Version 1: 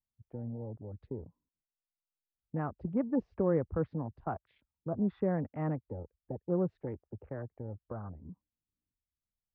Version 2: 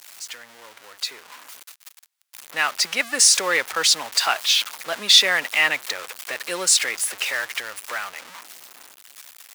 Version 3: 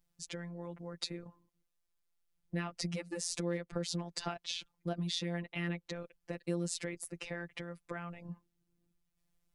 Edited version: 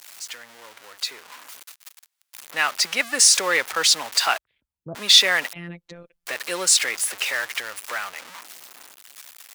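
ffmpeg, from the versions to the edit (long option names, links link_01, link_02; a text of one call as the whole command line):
ffmpeg -i take0.wav -i take1.wav -i take2.wav -filter_complex "[1:a]asplit=3[link_01][link_02][link_03];[link_01]atrim=end=4.382[link_04];[0:a]atrim=start=4.378:end=4.952[link_05];[link_02]atrim=start=4.948:end=5.532[link_06];[2:a]atrim=start=5.528:end=6.262[link_07];[link_03]atrim=start=6.258[link_08];[link_04][link_05]acrossfade=duration=0.004:curve1=hsin:curve2=hsin[link_09];[link_09][link_06]acrossfade=duration=0.004:curve1=hsin:curve2=hsin[link_10];[link_10][link_07]acrossfade=duration=0.004:curve1=hsin:curve2=hsin[link_11];[link_11][link_08]acrossfade=duration=0.004:curve1=hsin:curve2=hsin" out.wav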